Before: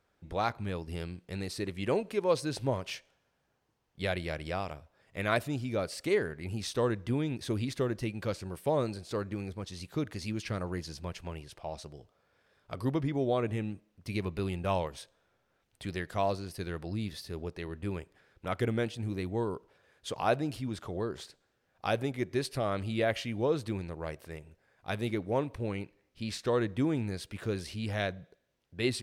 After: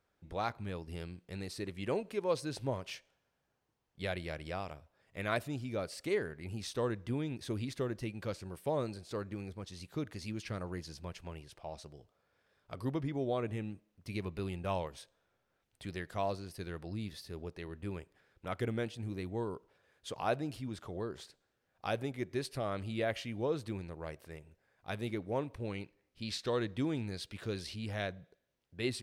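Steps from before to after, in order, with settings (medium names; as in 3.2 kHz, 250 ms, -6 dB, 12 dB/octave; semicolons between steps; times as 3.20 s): 25.57–27.76 s: dynamic bell 4 kHz, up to +7 dB, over -56 dBFS, Q 1.2; trim -5 dB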